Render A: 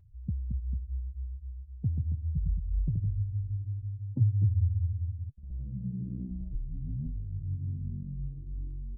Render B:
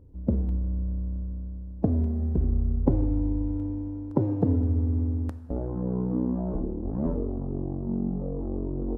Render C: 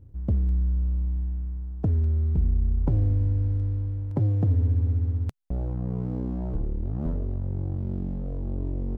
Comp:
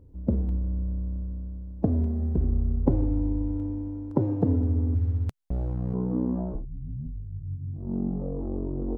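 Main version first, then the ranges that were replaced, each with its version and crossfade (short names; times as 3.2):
B
4.95–5.94 from C
6.54–7.85 from A, crossfade 0.24 s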